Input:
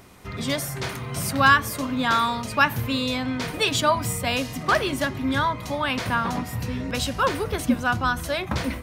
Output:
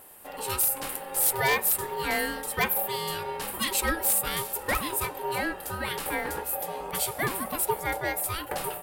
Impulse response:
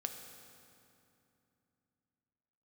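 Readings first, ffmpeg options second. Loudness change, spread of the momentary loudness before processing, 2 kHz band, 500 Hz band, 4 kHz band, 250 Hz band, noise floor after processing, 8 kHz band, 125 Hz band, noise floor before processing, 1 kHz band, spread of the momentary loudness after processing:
-3.5 dB, 8 LU, -6.5 dB, -4.5 dB, -6.5 dB, -12.0 dB, -41 dBFS, +4.5 dB, -12.0 dB, -35 dBFS, -7.0 dB, 8 LU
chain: -af "aeval=exprs='val(0)*sin(2*PI*670*n/s)':c=same,aexciter=amount=10:drive=3.3:freq=8.5k,aeval=exprs='0.282*(abs(mod(val(0)/0.282+3,4)-2)-1)':c=same,volume=-4dB"

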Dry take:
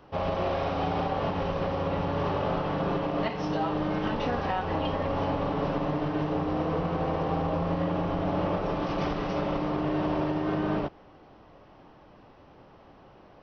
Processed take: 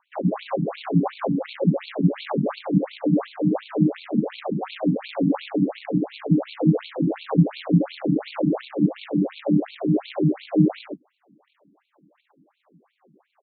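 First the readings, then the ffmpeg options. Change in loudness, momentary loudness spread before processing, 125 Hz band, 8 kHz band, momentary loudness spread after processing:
+5.5 dB, 1 LU, +7.0 dB, n/a, 5 LU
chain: -filter_complex "[0:a]aemphasis=mode=reproduction:type=bsi,afwtdn=0.0631,equalizer=f=100:t=o:w=2:g=12.5,asplit=2[a][b];[b]acompressor=threshold=-32dB:ratio=5,volume=-1dB[c];[a][c]amix=inputs=2:normalize=0,acrusher=bits=6:mode=log:mix=0:aa=0.000001,aecho=1:1:71:0.447,afftfilt=real='re*between(b*sr/1024,220*pow(3200/220,0.5+0.5*sin(2*PI*2.8*pts/sr))/1.41,220*pow(3200/220,0.5+0.5*sin(2*PI*2.8*pts/sr))*1.41)':imag='im*between(b*sr/1024,220*pow(3200/220,0.5+0.5*sin(2*PI*2.8*pts/sr))/1.41,220*pow(3200/220,0.5+0.5*sin(2*PI*2.8*pts/sr))*1.41)':win_size=1024:overlap=0.75,volume=5dB"

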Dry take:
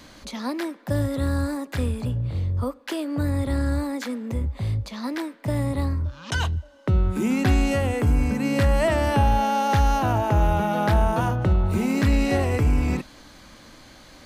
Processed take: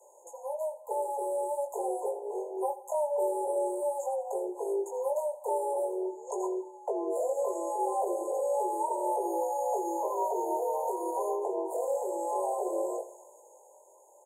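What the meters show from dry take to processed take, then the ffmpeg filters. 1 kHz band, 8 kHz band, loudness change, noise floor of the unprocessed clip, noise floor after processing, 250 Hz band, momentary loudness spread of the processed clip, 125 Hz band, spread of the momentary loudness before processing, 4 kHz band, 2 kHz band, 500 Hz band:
-4.5 dB, -4.0 dB, -8.0 dB, -48 dBFS, -57 dBFS, -15.5 dB, 5 LU, under -40 dB, 9 LU, under -40 dB, under -40 dB, -1.0 dB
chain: -filter_complex "[0:a]highpass=280,aemphasis=mode=reproduction:type=riaa,afftfilt=real='re*(1-between(b*sr/4096,750,6200))':imag='im*(1-between(b*sr/4096,750,6200))':win_size=4096:overlap=0.75,adynamicequalizer=threshold=0.0158:dfrequency=910:dqfactor=0.9:tfrequency=910:tqfactor=0.9:attack=5:release=100:ratio=0.375:range=2:mode=cutabove:tftype=bell,dynaudnorm=f=130:g=21:m=8.5dB,alimiter=limit=-11dB:level=0:latency=1:release=25,acrossover=split=640|3400[a][b][c];[a]acompressor=threshold=-19dB:ratio=4[d];[b]acompressor=threshold=-31dB:ratio=4[e];[c]acompressor=threshold=-56dB:ratio=4[f];[d][e][f]amix=inputs=3:normalize=0,afreqshift=290,flanger=delay=18.5:depth=5.5:speed=0.45,crystalizer=i=9:c=0,asplit=2[g][h];[h]aecho=0:1:83|166|249|332|415:0.168|0.0839|0.042|0.021|0.0105[i];[g][i]amix=inputs=2:normalize=0,volume=-9dB" -ar 44100 -c:a aac -b:a 192k

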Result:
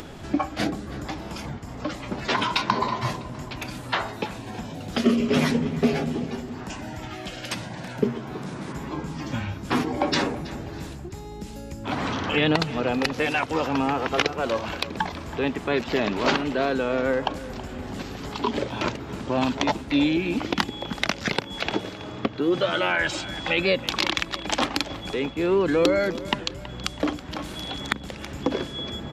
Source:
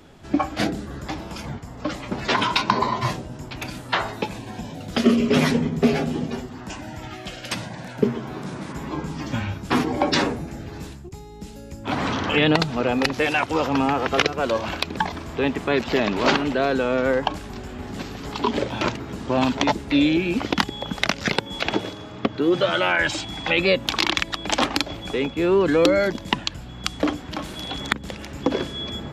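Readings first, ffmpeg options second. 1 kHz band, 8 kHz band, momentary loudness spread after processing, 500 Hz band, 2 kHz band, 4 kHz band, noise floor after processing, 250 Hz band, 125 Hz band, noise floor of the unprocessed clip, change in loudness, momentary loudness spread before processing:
-3.0 dB, -2.5 dB, 13 LU, -3.0 dB, -3.0 dB, -3.0 dB, -38 dBFS, -2.5 dB, -2.5 dB, -38 dBFS, -3.0 dB, 15 LU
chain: -filter_complex "[0:a]acompressor=mode=upward:threshold=-26dB:ratio=2.5,asplit=2[a][b];[b]adelay=325,lowpass=f=4.3k:p=1,volume=-15.5dB,asplit=2[c][d];[d]adelay=325,lowpass=f=4.3k:p=1,volume=0.48,asplit=2[e][f];[f]adelay=325,lowpass=f=4.3k:p=1,volume=0.48,asplit=2[g][h];[h]adelay=325,lowpass=f=4.3k:p=1,volume=0.48[i];[a][c][e][g][i]amix=inputs=5:normalize=0,volume=-3dB"

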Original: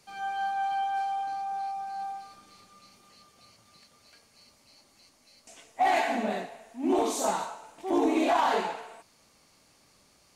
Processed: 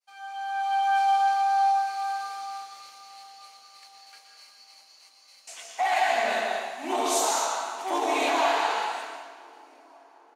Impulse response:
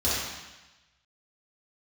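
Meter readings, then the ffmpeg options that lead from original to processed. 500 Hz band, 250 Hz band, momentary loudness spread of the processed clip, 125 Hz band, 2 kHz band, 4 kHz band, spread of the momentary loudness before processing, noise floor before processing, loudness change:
+1.0 dB, -7.5 dB, 18 LU, n/a, +6.0 dB, +7.5 dB, 15 LU, -63 dBFS, +3.5 dB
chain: -filter_complex "[0:a]highpass=860,agate=range=-33dB:threshold=-53dB:ratio=3:detection=peak,dynaudnorm=f=160:g=9:m=13.5dB,alimiter=limit=-13.5dB:level=0:latency=1:release=299,asplit=2[a][b];[b]adelay=756,lowpass=f=1.9k:p=1,volume=-22dB,asplit=2[c][d];[d]adelay=756,lowpass=f=1.9k:p=1,volume=0.52,asplit=2[e][f];[f]adelay=756,lowpass=f=1.9k:p=1,volume=0.52,asplit=2[g][h];[h]adelay=756,lowpass=f=1.9k:p=1,volume=0.52[i];[a][c][e][g][i]amix=inputs=5:normalize=0,asplit=2[j][k];[1:a]atrim=start_sample=2205,adelay=115[l];[k][l]afir=irnorm=-1:irlink=0,volume=-13.5dB[m];[j][m]amix=inputs=2:normalize=0,volume=-4dB"

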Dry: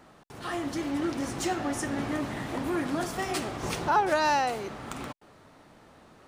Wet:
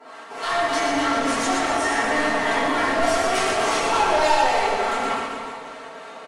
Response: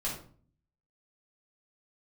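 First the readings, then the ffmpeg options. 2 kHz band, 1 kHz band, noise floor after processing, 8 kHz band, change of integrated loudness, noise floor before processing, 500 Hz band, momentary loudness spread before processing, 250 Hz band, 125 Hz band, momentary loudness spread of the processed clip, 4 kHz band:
+12.0 dB, +9.0 dB, -40 dBFS, +9.0 dB, +9.0 dB, -56 dBFS, +10.0 dB, 14 LU, +3.5 dB, -2.5 dB, 14 LU, +11.5 dB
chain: -filter_complex "[0:a]highpass=570,highshelf=f=5k:g=-8.5,aecho=1:1:4.4:0.93,asplit=2[a][b];[b]acompressor=threshold=-34dB:ratio=6,volume=2dB[c];[a][c]amix=inputs=2:normalize=0,acrossover=split=840[d][e];[d]aeval=exprs='val(0)*(1-0.7/2+0.7/2*cos(2*PI*3.4*n/s))':c=same[f];[e]aeval=exprs='val(0)*(1-0.7/2-0.7/2*cos(2*PI*3.4*n/s))':c=same[g];[f][g]amix=inputs=2:normalize=0,flanger=delay=0.9:depth=2.8:regen=88:speed=0.38:shape=sinusoidal,asoftclip=type=tanh:threshold=-35.5dB,aecho=1:1:120|252|397.2|556.9|732.6:0.631|0.398|0.251|0.158|0.1[h];[1:a]atrim=start_sample=2205,asetrate=22932,aresample=44100[i];[h][i]afir=irnorm=-1:irlink=0,volume=8dB"

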